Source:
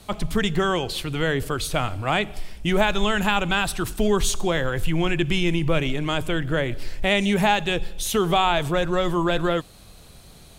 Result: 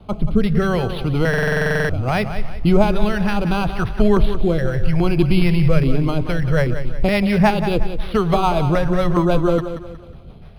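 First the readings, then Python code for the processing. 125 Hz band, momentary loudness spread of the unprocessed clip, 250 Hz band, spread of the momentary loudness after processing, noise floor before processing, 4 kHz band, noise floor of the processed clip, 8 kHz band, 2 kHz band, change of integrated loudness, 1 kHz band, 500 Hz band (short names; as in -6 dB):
+8.5 dB, 6 LU, +6.5 dB, 6 LU, -47 dBFS, -5.5 dB, -38 dBFS, under -10 dB, +1.0 dB, +4.5 dB, +1.5 dB, +4.5 dB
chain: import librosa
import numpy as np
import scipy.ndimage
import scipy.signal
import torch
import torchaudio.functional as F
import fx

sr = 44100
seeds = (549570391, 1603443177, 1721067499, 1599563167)

y = scipy.ndimage.median_filter(x, 5, mode='constant')
y = fx.rotary_switch(y, sr, hz=0.7, then_hz=7.0, switch_at_s=5.61)
y = fx.filter_lfo_notch(y, sr, shape='square', hz=1.2, low_hz=300.0, high_hz=1800.0, q=1.4)
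y = fx.low_shelf(y, sr, hz=160.0, db=-3.5)
y = fx.vibrato(y, sr, rate_hz=2.4, depth_cents=17.0)
y = fx.bass_treble(y, sr, bass_db=6, treble_db=-14)
y = fx.echo_feedback(y, sr, ms=182, feedback_pct=38, wet_db=-10.5)
y = fx.buffer_glitch(y, sr, at_s=(1.29,), block=2048, repeats=12)
y = np.interp(np.arange(len(y)), np.arange(len(y))[::6], y[::6])
y = y * 10.0 ** (7.0 / 20.0)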